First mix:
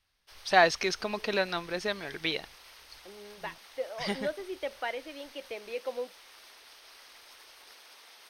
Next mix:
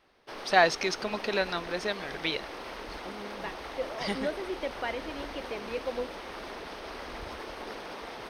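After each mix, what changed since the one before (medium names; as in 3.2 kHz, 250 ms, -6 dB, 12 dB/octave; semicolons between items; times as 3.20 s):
second voice: remove high-pass 380 Hz 12 dB/octave; background: remove differentiator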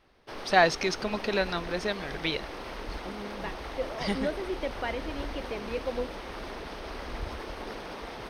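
master: add bass shelf 170 Hz +10.5 dB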